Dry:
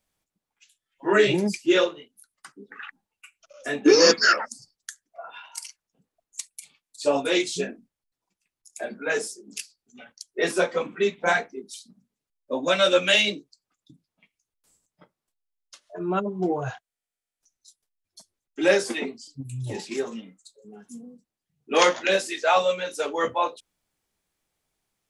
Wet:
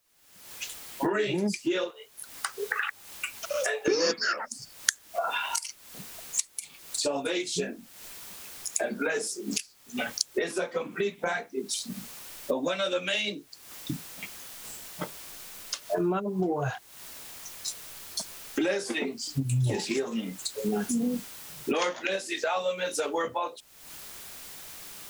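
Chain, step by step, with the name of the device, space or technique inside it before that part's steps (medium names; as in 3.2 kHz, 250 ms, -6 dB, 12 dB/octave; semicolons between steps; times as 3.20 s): 1.90–3.88 s: elliptic high-pass 430 Hz; cheap recorder with automatic gain (white noise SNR 37 dB; recorder AGC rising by 57 dB/s); trim -10 dB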